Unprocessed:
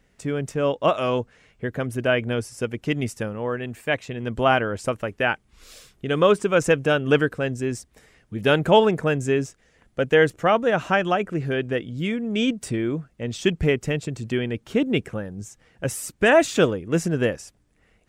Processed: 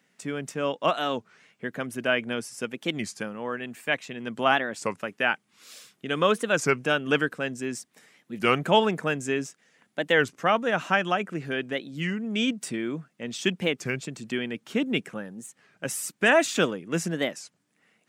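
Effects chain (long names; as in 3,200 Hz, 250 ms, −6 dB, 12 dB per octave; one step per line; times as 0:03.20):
high-pass filter 180 Hz 24 dB per octave
parametric band 440 Hz −7 dB 1.7 octaves
wow of a warped record 33 1/3 rpm, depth 250 cents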